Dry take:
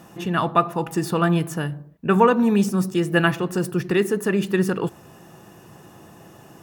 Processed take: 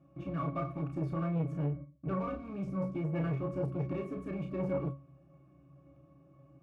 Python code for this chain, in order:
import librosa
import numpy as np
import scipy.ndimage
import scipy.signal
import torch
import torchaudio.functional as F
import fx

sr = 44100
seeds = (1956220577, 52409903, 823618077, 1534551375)

p1 = fx.fuzz(x, sr, gain_db=28.0, gate_db=-37.0)
p2 = x + F.gain(torch.from_numpy(p1), -7.0).numpy()
p3 = fx.octave_resonator(p2, sr, note='C#', decay_s=0.24)
p4 = fx.room_early_taps(p3, sr, ms=(31, 47), db=(-5.0, -11.5))
p5 = fx.transformer_sat(p4, sr, knee_hz=320.0)
y = F.gain(torch.from_numpy(p5), -2.0).numpy()